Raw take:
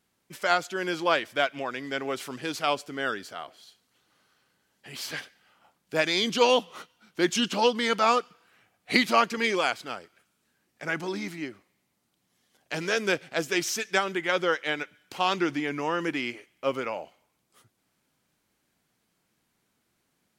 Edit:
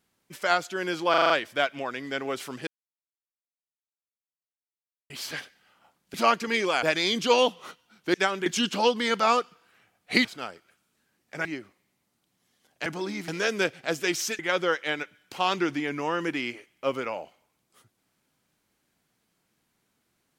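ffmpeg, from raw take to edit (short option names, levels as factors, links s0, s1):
-filter_complex "[0:a]asplit=17[s0][s1][s2][s3][s4][s5][s6][s7][s8][s9][s10][s11][s12][s13][s14][s15][s16];[s0]atrim=end=1.142[s17];[s1]atrim=start=1.098:end=1.142[s18];[s2]atrim=start=1.098:end=1.142[s19];[s3]atrim=start=1.098:end=1.142[s20];[s4]atrim=start=1.098:end=1.142[s21];[s5]atrim=start=1.098:end=2.47,asetpts=PTS-STARTPTS,afade=t=out:st=1.368:d=0.004:c=hsin[s22];[s6]atrim=start=2.47:end=4.9,asetpts=PTS-STARTPTS,volume=0[s23];[s7]atrim=start=4.9:end=5.942,asetpts=PTS-STARTPTS,afade=t=in:d=0.004:c=hsin[s24];[s8]atrim=start=9.038:end=9.732[s25];[s9]atrim=start=5.938:end=7.252[s26];[s10]atrim=start=13.868:end=14.192[s27];[s11]atrim=start=7.248:end=9.042[s28];[s12]atrim=start=9.728:end=10.932[s29];[s13]atrim=start=11.348:end=12.762[s30];[s14]atrim=start=10.928:end=11.352[s31];[s15]atrim=start=12.758:end=13.872[s32];[s16]atrim=start=14.188[s33];[s17][s18]acrossfade=d=0.004:c1=hsin:c2=hsin[s34];[s34][s19]acrossfade=d=0.004:c1=hsin:c2=hsin[s35];[s35][s20]acrossfade=d=0.004:c1=hsin:c2=hsin[s36];[s36][s21]acrossfade=d=0.004:c1=hsin:c2=hsin[s37];[s22][s23][s24]concat=n=3:v=0:a=1[s38];[s37][s38]acrossfade=d=0.004:c1=hsin:c2=hsin[s39];[s39][s25]acrossfade=d=0.004:c1=hsin:c2=hsin[s40];[s40][s26]acrossfade=d=0.004:c1=hsin:c2=hsin[s41];[s41][s27]acrossfade=d=0.004:c1=hsin:c2=hsin[s42];[s42][s28]acrossfade=d=0.004:c1=hsin:c2=hsin[s43];[s43][s29]acrossfade=d=0.004:c1=hsin:c2=hsin[s44];[s44][s30]acrossfade=d=0.004:c1=hsin:c2=hsin[s45];[s45][s31]acrossfade=d=0.004:c1=hsin:c2=hsin[s46];[s46][s32]acrossfade=d=0.004:c1=hsin:c2=hsin[s47];[s47][s33]acrossfade=d=0.004:c1=hsin:c2=hsin"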